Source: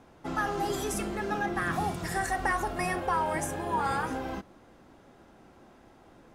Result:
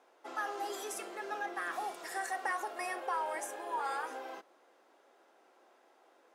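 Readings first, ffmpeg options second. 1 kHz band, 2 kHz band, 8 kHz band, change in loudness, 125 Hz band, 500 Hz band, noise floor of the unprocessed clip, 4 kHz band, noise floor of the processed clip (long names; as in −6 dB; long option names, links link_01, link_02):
−6.5 dB, −6.5 dB, −6.5 dB, −7.5 dB, below −35 dB, −8.0 dB, −57 dBFS, −6.5 dB, −67 dBFS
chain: -af "highpass=frequency=400:width=0.5412,highpass=frequency=400:width=1.3066,volume=-6.5dB"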